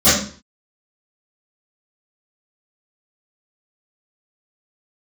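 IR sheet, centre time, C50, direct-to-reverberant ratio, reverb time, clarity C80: 54 ms, 1.0 dB, -20.5 dB, 0.45 s, 7.0 dB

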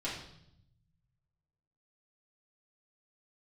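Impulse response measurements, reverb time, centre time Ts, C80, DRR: 0.75 s, 42 ms, 7.0 dB, -8.5 dB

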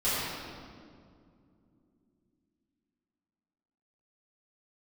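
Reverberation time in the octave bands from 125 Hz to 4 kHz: 3.7, 4.2, 2.8, 2.0, 1.6, 1.4 s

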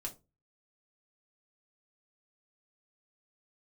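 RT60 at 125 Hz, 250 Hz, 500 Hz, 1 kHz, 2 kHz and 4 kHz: 0.45, 0.35, 0.30, 0.25, 0.15, 0.15 s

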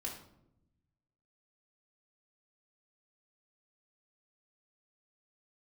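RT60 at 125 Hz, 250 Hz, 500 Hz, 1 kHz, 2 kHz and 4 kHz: 1.7, 1.3, 0.90, 0.65, 0.50, 0.45 s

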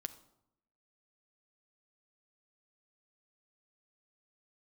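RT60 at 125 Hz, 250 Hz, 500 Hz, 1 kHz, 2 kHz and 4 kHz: 0.95, 0.95, 0.80, 0.80, 0.55, 0.50 s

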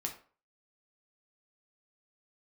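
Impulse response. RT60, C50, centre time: 0.40 s, 9.5 dB, 16 ms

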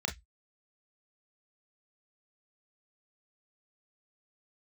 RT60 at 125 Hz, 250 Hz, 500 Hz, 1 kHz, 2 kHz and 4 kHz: 0.25, 0.10, 0.10, 0.10, 0.15, 0.15 s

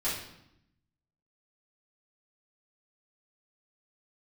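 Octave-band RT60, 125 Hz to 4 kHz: 1.3, 1.1, 0.80, 0.80, 0.70, 0.70 s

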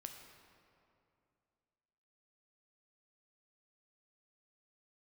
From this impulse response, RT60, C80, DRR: 2.6 s, 6.5 dB, 3.5 dB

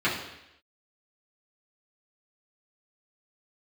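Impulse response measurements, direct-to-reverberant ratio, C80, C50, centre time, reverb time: -10.0 dB, 8.0 dB, 5.0 dB, 40 ms, 0.85 s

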